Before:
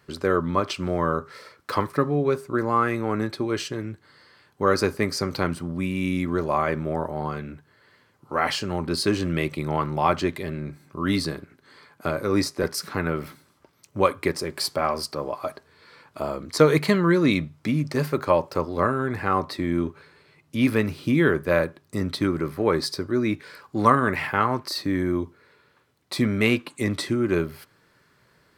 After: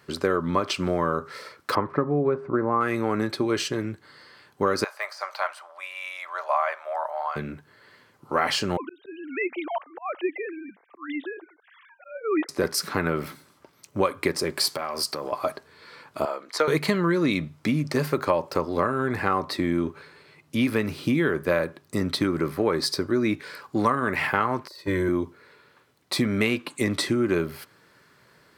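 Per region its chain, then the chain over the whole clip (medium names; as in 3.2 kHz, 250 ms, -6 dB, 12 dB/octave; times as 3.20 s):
1.75–2.81 s: low-pass 1.4 kHz + upward compressor, threshold -31 dBFS
4.84–7.36 s: de-esser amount 80% + Chebyshev high-pass 620 Hz, order 5 + treble shelf 4.2 kHz -11 dB
8.77–12.49 s: formants replaced by sine waves + high-pass 370 Hz + slow attack 470 ms
14.67–15.32 s: compression 12:1, threshold -28 dBFS + tilt EQ +1.5 dB/octave
16.25–16.68 s: high-pass 660 Hz + treble shelf 4.1 kHz -10 dB + band-stop 1.1 kHz, Q 17
24.67–25.09 s: de-esser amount 80% + gate -26 dBFS, range -14 dB + comb 2 ms, depth 98%
whole clip: compression, threshold -22 dBFS; bass shelf 91 Hz -10 dB; trim +4 dB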